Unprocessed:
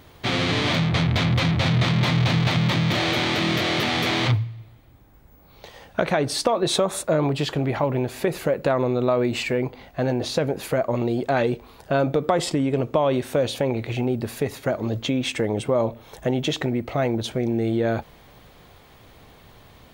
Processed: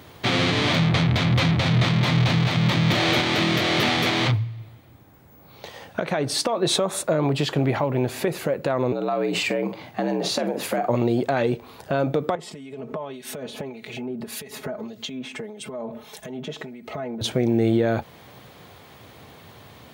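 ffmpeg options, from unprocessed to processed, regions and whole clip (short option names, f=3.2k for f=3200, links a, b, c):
-filter_complex "[0:a]asettb=1/sr,asplit=3[a][b][c];[a]atrim=end=8.924[d];[b]atrim=start=8.92:end=10.89,asetpts=PTS-STARTPTS,afade=t=in:d=0.004:c=qsin,afade=t=out:st=1.966:d=0.004:c=qsin,afreqshift=67,asplit=2[e][f];[f]adelay=46,volume=-11dB[g];[e][g]amix=inputs=2:normalize=0,atrim=end_sample=86877,acompressor=threshold=-24dB:ratio=4:attack=3.2:release=140:knee=1:detection=peak[h];[c]atrim=start=10.886[i];[d][h]acrossfade=d=0.004:c1=hsin:c2=qsin[j];[j][i]acrossfade=d=0.004:c1=qsin:c2=hsin,asettb=1/sr,asplit=3[k][l][m];[k]atrim=end=12.354[n];[l]atrim=start=12.35:end=17.21,asetpts=PTS-STARTPTS,afade=t=in:d=0.004:c=qsin,afade=t=out:st=4.856:d=0.004:c=qsin,aecho=1:1:4.7:0.99,atrim=end_sample=214326,acompressor=threshold=-30dB:ratio=16:attack=3.2:release=140:knee=1:detection=peak,acrossover=split=2100[o][p];[o]aeval=exprs='val(0)*(1-0.7/2+0.7/2*cos(2*PI*1.7*n/s))':c=same[q];[p]aeval=exprs='val(0)*(1-0.7/2-0.7/2*cos(2*PI*1.7*n/s))':c=same[r];[q][r]amix=inputs=2:normalize=0[s];[m]atrim=start=17.206[t];[n][s]acrossfade=d=0.004:c1=hsin:c2=qsin[u];[u][t]acrossfade=d=0.004:c1=qsin:c2=hsin,highpass=f=84:w=0.5412,highpass=f=84:w=1.3066,alimiter=limit=-14.5dB:level=0:latency=1:release=363,volume=4dB"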